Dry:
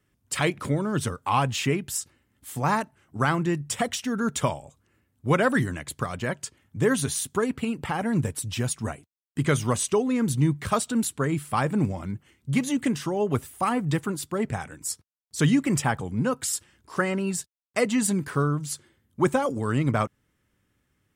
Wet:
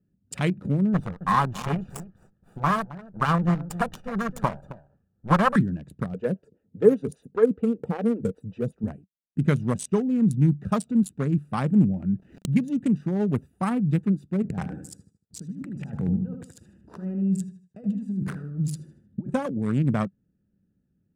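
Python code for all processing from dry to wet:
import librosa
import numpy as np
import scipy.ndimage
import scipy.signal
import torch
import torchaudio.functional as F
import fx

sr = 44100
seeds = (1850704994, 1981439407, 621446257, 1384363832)

y = fx.chain(x, sr, fx.lower_of_two(delay_ms=1.7),
    fx.band_shelf(hz=1100.0, db=10.0, octaves=1.2),
    fx.echo_single(ms=266, db=-13.0), at=(0.94, 5.56))
y = fx.chain(y, sr, fx.peak_eq(hz=470.0, db=14.5, octaves=0.41),
    fx.stagger_phaser(hz=5.1), at=(6.14, 8.84))
y = fx.chain(y, sr, fx.peak_eq(hz=2000.0, db=7.0, octaves=1.1),
    fx.sample_gate(floor_db=-56.0),
    fx.pre_swell(db_per_s=93.0), at=(11.97, 12.54))
y = fx.chain(y, sr, fx.over_compress(threshold_db=-34.0, ratio=-1.0),
    fx.echo_feedback(ms=77, feedback_pct=35, wet_db=-6.0), at=(14.42, 19.3))
y = fx.wiener(y, sr, points=41)
y = fx.peak_eq(y, sr, hz=190.0, db=13.5, octaves=0.59)
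y = F.gain(torch.from_numpy(y), -3.0).numpy()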